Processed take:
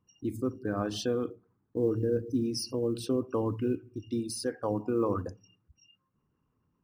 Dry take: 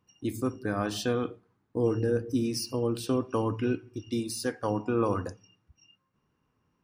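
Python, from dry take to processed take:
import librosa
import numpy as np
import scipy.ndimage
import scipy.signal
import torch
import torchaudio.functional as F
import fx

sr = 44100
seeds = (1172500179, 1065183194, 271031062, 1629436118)

y = fx.envelope_sharpen(x, sr, power=1.5)
y = fx.quant_float(y, sr, bits=6)
y = y * 10.0 ** (-1.5 / 20.0)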